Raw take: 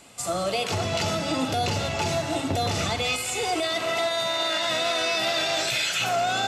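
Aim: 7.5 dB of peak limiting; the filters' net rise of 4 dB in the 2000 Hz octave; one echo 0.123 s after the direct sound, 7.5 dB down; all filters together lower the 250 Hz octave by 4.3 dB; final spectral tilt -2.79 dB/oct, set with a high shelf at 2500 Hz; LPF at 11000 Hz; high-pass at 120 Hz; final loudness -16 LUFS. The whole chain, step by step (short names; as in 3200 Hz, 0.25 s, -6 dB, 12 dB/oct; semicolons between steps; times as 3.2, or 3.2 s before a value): HPF 120 Hz; LPF 11000 Hz; bell 250 Hz -5.5 dB; bell 2000 Hz +8 dB; high shelf 2500 Hz -5.5 dB; limiter -20.5 dBFS; echo 0.123 s -7.5 dB; gain +11.5 dB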